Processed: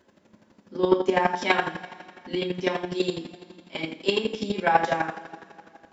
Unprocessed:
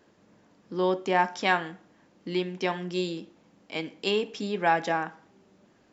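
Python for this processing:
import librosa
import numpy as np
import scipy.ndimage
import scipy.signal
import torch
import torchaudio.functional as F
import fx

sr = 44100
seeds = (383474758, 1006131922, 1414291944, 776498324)

y = fx.rev_double_slope(x, sr, seeds[0], early_s=0.45, late_s=2.7, knee_db=-19, drr_db=-6.5)
y = fx.chopper(y, sr, hz=12.0, depth_pct=65, duty_pct=20)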